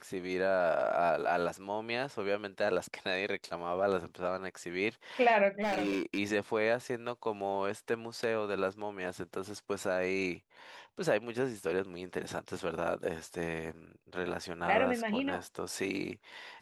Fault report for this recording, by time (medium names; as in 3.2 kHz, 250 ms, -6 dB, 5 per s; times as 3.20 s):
5.61–6.19 s: clipped -28 dBFS